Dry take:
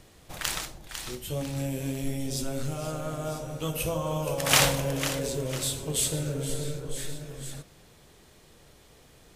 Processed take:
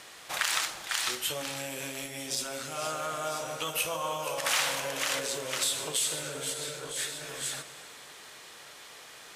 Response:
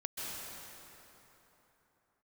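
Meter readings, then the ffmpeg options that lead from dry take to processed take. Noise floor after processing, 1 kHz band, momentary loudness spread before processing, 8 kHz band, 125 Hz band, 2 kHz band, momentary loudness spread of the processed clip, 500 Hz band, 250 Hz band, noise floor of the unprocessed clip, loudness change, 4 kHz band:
-49 dBFS, +0.5 dB, 14 LU, 0.0 dB, -16.5 dB, +1.0 dB, 19 LU, -4.5 dB, -11.5 dB, -56 dBFS, -1.5 dB, +0.5 dB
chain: -filter_complex "[0:a]acontrast=88,alimiter=limit=0.2:level=0:latency=1:release=121,acompressor=threshold=0.0447:ratio=6,bandpass=f=1300:t=q:w=0.9:csg=0,crystalizer=i=6:c=0,asplit=2[s0][s1];[1:a]atrim=start_sample=2205[s2];[s1][s2]afir=irnorm=-1:irlink=0,volume=0.188[s3];[s0][s3]amix=inputs=2:normalize=0"

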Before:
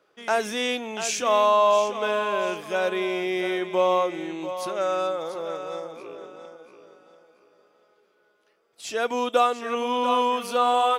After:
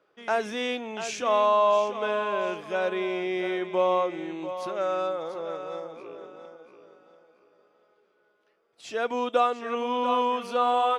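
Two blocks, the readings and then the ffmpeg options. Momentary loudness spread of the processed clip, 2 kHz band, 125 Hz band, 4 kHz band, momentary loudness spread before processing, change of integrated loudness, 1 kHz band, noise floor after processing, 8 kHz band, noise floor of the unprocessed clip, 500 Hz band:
13 LU, -3.5 dB, -2.0 dB, -5.5 dB, 12 LU, -2.5 dB, -2.5 dB, -68 dBFS, no reading, -66 dBFS, -2.0 dB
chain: -af "aemphasis=mode=reproduction:type=50fm,volume=0.75"

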